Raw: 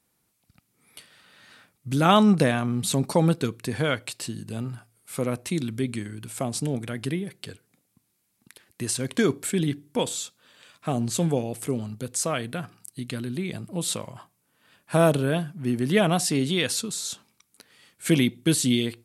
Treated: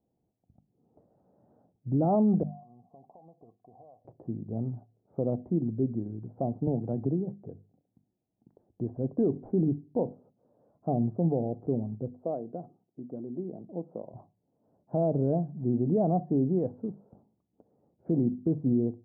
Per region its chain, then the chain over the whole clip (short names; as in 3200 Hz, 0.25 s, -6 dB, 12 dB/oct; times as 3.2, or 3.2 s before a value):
2.43–4.05 vocal tract filter a + compressor 12:1, threshold -47 dBFS
6.67–7.34 bell 880 Hz +5 dB 0.3 oct + three-band squash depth 100%
8.96–9.69 CVSD 64 kbps + mismatched tape noise reduction decoder only
12.11–14.14 HPF 270 Hz + tape spacing loss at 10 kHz 35 dB
whole clip: elliptic low-pass 750 Hz, stop band 80 dB; notches 50/100/150/200/250 Hz; limiter -17.5 dBFS